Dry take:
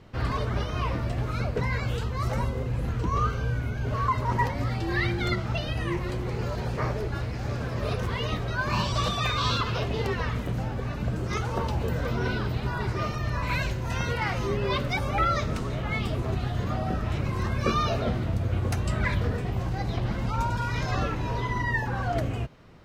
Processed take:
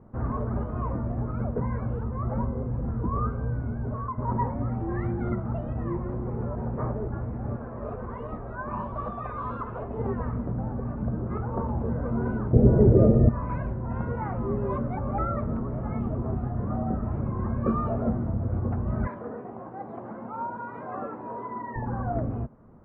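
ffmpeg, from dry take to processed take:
-filter_complex "[0:a]asettb=1/sr,asplit=3[s0][s1][s2];[s0]atrim=end=7.564[s3];[s1]atrim=start=7.56:end=9.98,asetpts=PTS-STARTPTS,afade=t=in:d=0.004:c=qsin,afade=t=out:st=2.416:d=0.004:c=qsin,equalizer=f=130:t=o:w=2.5:g=-9[s4];[s2]atrim=start=9.976[s5];[s3][s4]acrossfade=d=0.004:c1=hsin:c2=qsin[s6];[s6][s5]acrossfade=d=0.004:c1=qsin:c2=hsin,asettb=1/sr,asplit=3[s7][s8][s9];[s7]atrim=end=12.534[s10];[s8]atrim=start=12.53:end=13.29,asetpts=PTS-STARTPTS,afade=t=in:d=0.004:c=qsin,afade=t=out:st=0.756:d=0.004:c=qsin,lowshelf=f=710:t=q:w=3:g=12[s11];[s9]atrim=start=13.286[s12];[s10][s11]acrossfade=d=0.004:c1=hsin:c2=qsin[s13];[s13][s12]acrossfade=d=0.004:c1=qsin:c2=hsin,asettb=1/sr,asplit=3[s14][s15][s16];[s14]atrim=end=19.074[s17];[s15]atrim=start=19.07:end=21.76,asetpts=PTS-STARTPTS,afade=t=in:d=0.004:c=qsin,afade=t=out:st=2.686:d=0.004:c=qsin,highpass=360[s18];[s16]atrim=start=21.756[s19];[s17][s18]acrossfade=d=0.004:c1=hsin:c2=qsin[s20];[s20][s19]acrossfade=d=0.004:c1=qsin:c2=hsin,asplit=2[s21][s22];[s21]atrim=end=4.18,asetpts=PTS-STARTPTS,afade=t=out:st=3.78:d=0.4:silence=0.398107[s23];[s22]atrim=start=4.18,asetpts=PTS-STARTPTS,afade=t=in:d=0.004:c=hsin:silence=0.398107[s24];[s23][s24]concat=n=2:v=0:a=1,lowpass=f=1200:w=0.5412,lowpass=f=1200:w=1.3066,equalizer=f=230:w=5.1:g=8.5,volume=0.841"

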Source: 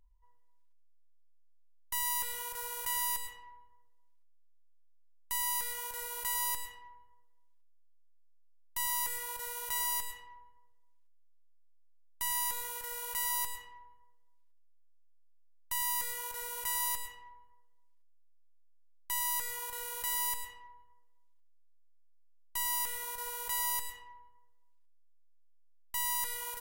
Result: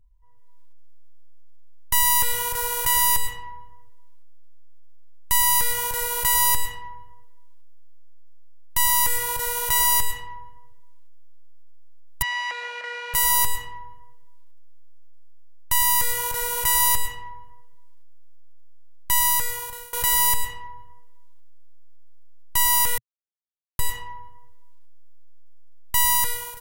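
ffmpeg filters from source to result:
-filter_complex "[0:a]asettb=1/sr,asplit=3[s0][s1][s2];[s0]atrim=end=12.224[s3];[s1]atrim=start=12.22:end=13.14,asetpts=PTS-STARTPTS,afade=t=in:d=0.004:c=qsin,afade=t=out:st=0.916:d=0.004:c=qsin,highpass=f=450:w=0.5412,highpass=f=450:w=1.3066,equalizer=f=450:t=q:w=4:g=-5,equalizer=f=650:t=q:w=4:g=9,equalizer=f=950:t=q:w=4:g=-8,equalizer=f=1700:t=q:w=4:g=3,equalizer=f=2400:t=q:w=4:g=5,equalizer=f=3500:t=q:w=4:g=-8,lowpass=f=3900:w=0.5412,lowpass=f=3900:w=1.3066[s4];[s2]atrim=start=13.136[s5];[s3][s4]acrossfade=d=0.004:c1=hsin:c2=qsin[s6];[s6][s5]acrossfade=d=0.004:c1=qsin:c2=hsin,asplit=4[s7][s8][s9][s10];[s7]atrim=end=19.93,asetpts=PTS-STARTPTS,afade=t=out:st=19.25:d=0.68:silence=0.0794328[s11];[s8]atrim=start=19.93:end=22.98,asetpts=PTS-STARTPTS,afade=t=in:d=0.004:c=hsin:silence=0.0794328,afade=t=out:st=3.046:d=0.004:c=hsin[s12];[s9]atrim=start=22.98:end=23.79,asetpts=PTS-STARTPTS,volume=0[s13];[s10]atrim=start=23.79,asetpts=PTS-STARTPTS,afade=t=in:d=0.004:c=hsin[s14];[s11][s12][s13][s14]concat=n=4:v=0:a=1,lowshelf=f=220:g=8,dynaudnorm=f=120:g=7:m=5.31,equalizer=f=120:w=1.5:g=7.5"

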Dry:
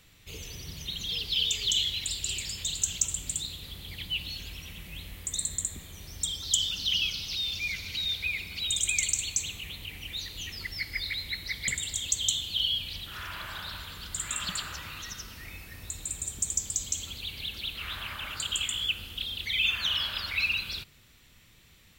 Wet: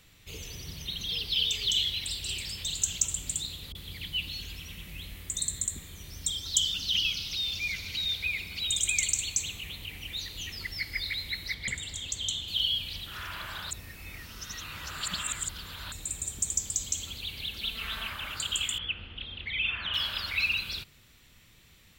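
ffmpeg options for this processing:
-filter_complex "[0:a]asettb=1/sr,asplit=3[s0][s1][s2];[s0]atrim=end=0.764[s3];[s1]atrim=start=0.76:end=2.71,asetpts=PTS-STARTPTS,afade=t=in:d=0.004:c=qsin,afade=t=out:st=1.946:d=0.004:c=qsin,bandreject=f=7000:w=5.1[s4];[s2]atrim=start=2.706[s5];[s3][s4]acrossfade=d=0.004:c1=hsin:c2=qsin[s6];[s6][s5]acrossfade=d=0.004:c1=qsin:c2=hsin,asettb=1/sr,asplit=3[s7][s8][s9];[s7]atrim=end=3.724[s10];[s8]atrim=start=3.72:end=7.33,asetpts=PTS-STARTPTS,afade=t=in:d=0.004:c=qsin,afade=t=out:st=3.606:d=0.004:c=qsin,acrossover=split=730[s11][s12];[s12]adelay=30[s13];[s11][s13]amix=inputs=2:normalize=0,atrim=end_sample=159201[s14];[s9]atrim=start=7.326[s15];[s10][s14]acrossfade=d=0.004:c1=hsin:c2=qsin[s16];[s16][s15]acrossfade=d=0.004:c1=qsin:c2=hsin,asettb=1/sr,asplit=3[s17][s18][s19];[s17]atrim=end=11.544[s20];[s18]atrim=start=11.54:end=12.48,asetpts=PTS-STARTPTS,afade=t=in:d=0.004:c=qsin,afade=t=out:st=0.936:d=0.004:c=qsin,lowpass=f=3300:p=1[s21];[s19]atrim=start=12.476[s22];[s20][s21]acrossfade=d=0.004:c1=hsin:c2=qsin[s23];[s23][s22]acrossfade=d=0.004:c1=qsin:c2=hsin,asettb=1/sr,asplit=3[s24][s25][s26];[s24]atrim=end=17.614[s27];[s25]atrim=start=17.61:end=18.1,asetpts=PTS-STARTPTS,afade=t=in:d=0.004:c=qsin,afade=t=out:st=0.486:d=0.004:c=qsin,aecho=1:1:4.5:0.7,atrim=end_sample=21609[s28];[s26]atrim=start=18.096[s29];[s27][s28]acrossfade=d=0.004:c1=hsin:c2=qsin[s30];[s30][s29]acrossfade=d=0.004:c1=qsin:c2=hsin,asettb=1/sr,asplit=3[s31][s32][s33];[s31]atrim=end=18.784[s34];[s32]atrim=start=18.78:end=19.94,asetpts=PTS-STARTPTS,afade=t=in:d=0.004:c=qsin,afade=t=out:st=1.156:d=0.004:c=qsin,lowpass=f=2800:w=0.5412,lowpass=f=2800:w=1.3066[s35];[s33]atrim=start=19.936[s36];[s34][s35]acrossfade=d=0.004:c1=hsin:c2=qsin[s37];[s37][s36]acrossfade=d=0.004:c1=qsin:c2=hsin,asplit=3[s38][s39][s40];[s38]atrim=end=13.712[s41];[s39]atrim=start=13.708:end=15.922,asetpts=PTS-STARTPTS,areverse[s42];[s40]atrim=start=15.918[s43];[s41][s42]acrossfade=d=0.004:c1=hsin:c2=hsin[s44];[s44][s43]acrossfade=d=0.004:c1=hsin:c2=hsin"

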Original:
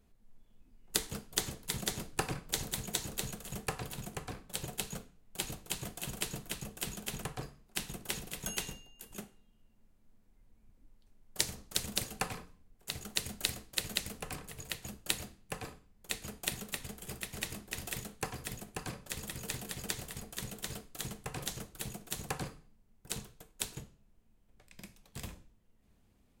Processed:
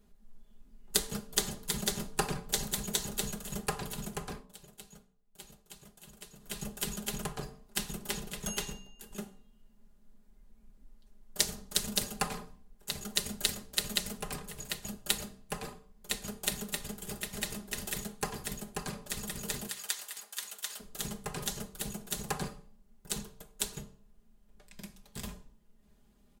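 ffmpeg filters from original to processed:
-filter_complex "[0:a]asettb=1/sr,asplit=3[s0][s1][s2];[s0]atrim=end=8.104[s3];[s1]atrim=start=8.1:end=9.21,asetpts=PTS-STARTPTS,afade=t=in:d=0.004:c=qsin,afade=t=out:st=1.106:d=0.004:c=qsin,highshelf=f=6300:g=-5.5[s4];[s2]atrim=start=9.206[s5];[s3][s4]acrossfade=d=0.004:c1=hsin:c2=qsin[s6];[s6][s5]acrossfade=d=0.004:c1=qsin:c2=hsin,asettb=1/sr,asplit=3[s7][s8][s9];[s7]atrim=end=19.674[s10];[s8]atrim=start=19.67:end=20.8,asetpts=PTS-STARTPTS,afade=t=in:d=0.004:c=qsin,afade=t=out:st=1.126:d=0.004:c=qsin,highpass=1100[s11];[s9]atrim=start=20.796[s12];[s10][s11]acrossfade=d=0.004:c1=hsin:c2=qsin[s13];[s13][s12]acrossfade=d=0.004:c1=qsin:c2=hsin,asplit=3[s14][s15][s16];[s14]atrim=end=4.53,asetpts=PTS-STARTPTS,afade=t=out:st=4.31:d=0.22:silence=0.149624[s17];[s15]atrim=start=4.53:end=6.39,asetpts=PTS-STARTPTS,volume=0.15[s18];[s16]atrim=start=6.39,asetpts=PTS-STARTPTS,afade=t=in:d=0.22:silence=0.149624[s19];[s17][s18][s19]concat=n=3:v=0:a=1,equalizer=f=2300:w=2.9:g=-4.5,aecho=1:1:4.9:0.68,bandreject=f=63.51:t=h:w=4,bandreject=f=127.02:t=h:w=4,bandreject=f=190.53:t=h:w=4,bandreject=f=254.04:t=h:w=4,bandreject=f=317.55:t=h:w=4,bandreject=f=381.06:t=h:w=4,bandreject=f=444.57:t=h:w=4,bandreject=f=508.08:t=h:w=4,bandreject=f=571.59:t=h:w=4,bandreject=f=635.1:t=h:w=4,bandreject=f=698.61:t=h:w=4,bandreject=f=762.12:t=h:w=4,bandreject=f=825.63:t=h:w=4,bandreject=f=889.14:t=h:w=4,bandreject=f=952.65:t=h:w=4,bandreject=f=1016.16:t=h:w=4,bandreject=f=1079.67:t=h:w=4,bandreject=f=1143.18:t=h:w=4,bandreject=f=1206.69:t=h:w=4,volume=1.26"

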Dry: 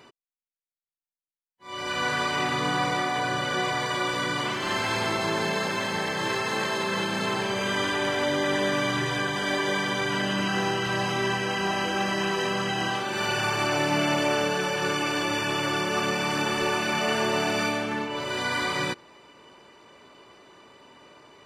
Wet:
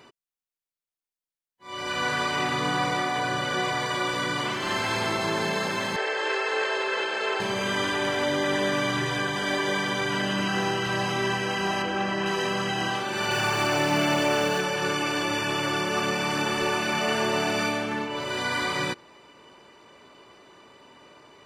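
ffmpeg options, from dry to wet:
-filter_complex "[0:a]asettb=1/sr,asplit=3[s0][s1][s2];[s0]atrim=end=5.964[s3];[s1]atrim=start=5.96:end=7.4,asetpts=PTS-STARTPTS,afade=t=in:d=0.004:c=qsin,afade=t=out:st=1.436:d=0.004:c=qsin,highpass=f=420:w=0.5412,highpass=f=420:w=1.3066,equalizer=f=430:t=q:w=4:g=8,equalizer=f=1100:t=q:w=4:g=-3,equalizer=f=1500:t=q:w=4:g=4,equalizer=f=2700:t=q:w=4:g=3,equalizer=f=3900:t=q:w=4:g=-4,equalizer=f=6000:t=q:w=4:g=-7,lowpass=f=7300:w=0.5412,lowpass=f=7300:w=1.3066[s4];[s2]atrim=start=7.396[s5];[s3][s4]acrossfade=d=0.004:c1=hsin:c2=qsin[s6];[s6][s5]acrossfade=d=0.004:c1=qsin:c2=hsin,asettb=1/sr,asplit=3[s7][s8][s9];[s7]atrim=end=11.824[s10];[s8]atrim=start=11.82:end=12.26,asetpts=PTS-STARTPTS,afade=t=in:d=0.004:c=qsin,afade=t=out:st=0.436:d=0.004:c=qsin,lowpass=f=3000:p=1[s11];[s9]atrim=start=12.256[s12];[s10][s11]acrossfade=d=0.004:c1=hsin:c2=qsin[s13];[s13][s12]acrossfade=d=0.004:c1=qsin:c2=hsin,asettb=1/sr,asplit=3[s14][s15][s16];[s14]atrim=end=13.314[s17];[s15]atrim=start=13.31:end=14.61,asetpts=PTS-STARTPTS,afade=t=in:d=0.004:c=qsin,afade=t=out:st=1.296:d=0.004:c=qsin,aeval=exprs='val(0)+0.5*0.0168*sgn(val(0))':c=same[s18];[s16]atrim=start=14.606[s19];[s17][s18]acrossfade=d=0.004:c1=hsin:c2=qsin[s20];[s20][s19]acrossfade=d=0.004:c1=qsin:c2=hsin"

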